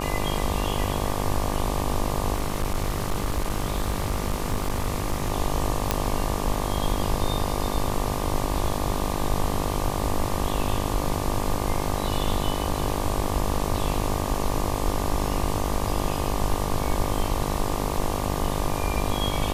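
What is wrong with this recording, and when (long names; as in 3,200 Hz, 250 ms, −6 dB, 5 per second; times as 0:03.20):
mains buzz 50 Hz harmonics 24 −29 dBFS
0:02.34–0:05.32: clipping −20 dBFS
0:05.91: click −6 dBFS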